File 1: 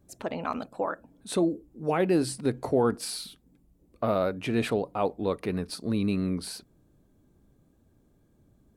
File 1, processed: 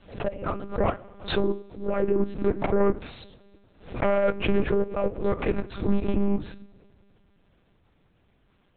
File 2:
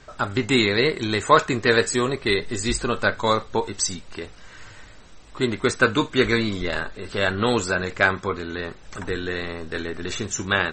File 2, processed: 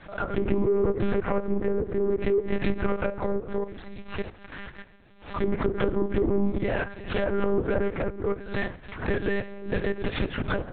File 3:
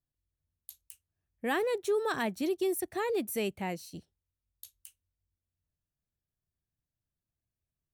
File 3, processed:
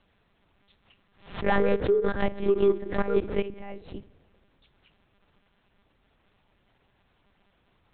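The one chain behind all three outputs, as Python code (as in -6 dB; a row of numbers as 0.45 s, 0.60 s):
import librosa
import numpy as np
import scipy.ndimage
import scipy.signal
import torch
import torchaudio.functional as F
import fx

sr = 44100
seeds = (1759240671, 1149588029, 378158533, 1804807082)

y = fx.hum_notches(x, sr, base_hz=50, count=7)
y = fx.env_lowpass_down(y, sr, base_hz=370.0, full_db=-16.5)
y = fx.lowpass(y, sr, hz=2100.0, slope=6)
y = fx.low_shelf(y, sr, hz=110.0, db=-11.5)
y = fx.level_steps(y, sr, step_db=16)
y = fx.rotary(y, sr, hz=0.65)
y = fx.fold_sine(y, sr, drive_db=8, ceiling_db=-18.5)
y = fx.dmg_noise_colour(y, sr, seeds[0], colour='pink', level_db=-69.0)
y = fx.rev_double_slope(y, sr, seeds[1], early_s=0.27, late_s=2.3, knee_db=-18, drr_db=10.5)
y = fx.lpc_monotone(y, sr, seeds[2], pitch_hz=200.0, order=8)
y = fx.pre_swell(y, sr, db_per_s=130.0)
y = librosa.util.normalize(y) * 10.0 ** (-9 / 20.0)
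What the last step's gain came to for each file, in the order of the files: +2.0 dB, -0.5 dB, +2.5 dB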